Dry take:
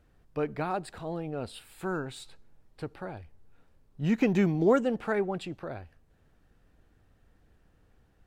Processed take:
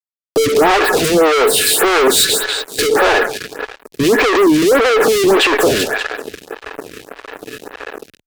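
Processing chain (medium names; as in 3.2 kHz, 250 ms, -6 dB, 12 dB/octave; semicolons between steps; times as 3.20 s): in parallel at -7 dB: hard clipper -30.5 dBFS, distortion -4 dB; on the sum: compression, threshold -27 dBFS, peak gain reduction 10 dB; small resonant body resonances 430/1700 Hz, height 15 dB, ringing for 60 ms; on a send: feedback echo behind a high-pass 192 ms, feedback 41%, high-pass 2.5 kHz, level -5.5 dB; on the sum: level rider gain up to 10 dB; elliptic high-pass 270 Hz; fuzz box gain 43 dB, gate -51 dBFS; lamp-driven phase shifter 1.7 Hz; trim +5.5 dB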